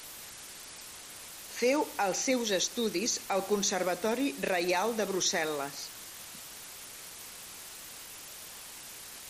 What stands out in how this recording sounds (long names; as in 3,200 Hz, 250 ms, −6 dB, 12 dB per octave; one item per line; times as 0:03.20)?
a quantiser's noise floor 8 bits, dither triangular
MP3